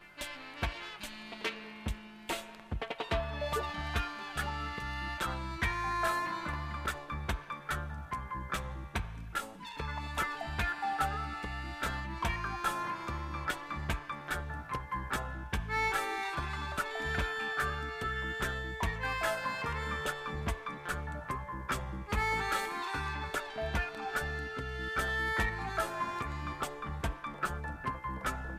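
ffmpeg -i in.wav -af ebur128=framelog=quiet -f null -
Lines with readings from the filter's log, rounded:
Integrated loudness:
  I:         -35.9 LUFS
  Threshold: -45.9 LUFS
Loudness range:
  LRA:         3.3 LU
  Threshold: -55.7 LUFS
  LRA low:   -37.6 LUFS
  LRA high:  -34.4 LUFS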